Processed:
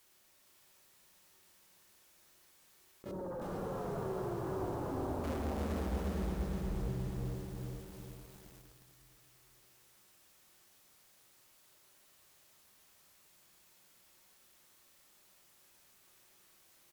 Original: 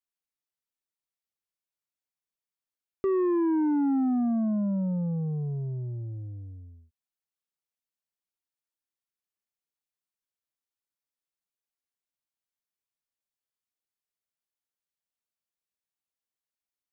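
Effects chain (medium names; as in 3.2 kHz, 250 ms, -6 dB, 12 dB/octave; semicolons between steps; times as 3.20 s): cycle switcher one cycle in 2, inverted; inverted gate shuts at -42 dBFS, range -30 dB; reverberation RT60 1.6 s, pre-delay 3 ms, DRR 2.5 dB; compressor with a negative ratio -53 dBFS, ratio -0.5; sine folder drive 14 dB, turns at -41.5 dBFS; 3.11–5.24 s: Bessel low-pass 830 Hz, order 8; feedback delay 462 ms, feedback 47%, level -4.5 dB; bit-crushed delay 357 ms, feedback 55%, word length 10-bit, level -3 dB; trim +5 dB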